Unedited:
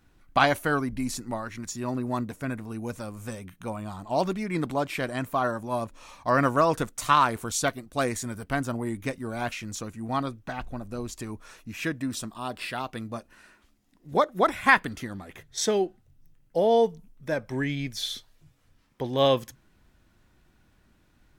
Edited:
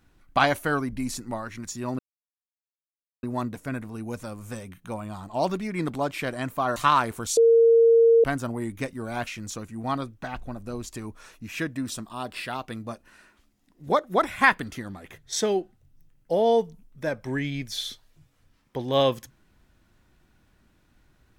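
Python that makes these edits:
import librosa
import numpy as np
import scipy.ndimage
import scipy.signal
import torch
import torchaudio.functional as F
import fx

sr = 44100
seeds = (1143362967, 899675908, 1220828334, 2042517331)

y = fx.edit(x, sr, fx.insert_silence(at_s=1.99, length_s=1.24),
    fx.cut(start_s=5.52, length_s=1.49),
    fx.bleep(start_s=7.62, length_s=0.87, hz=460.0, db=-13.0), tone=tone)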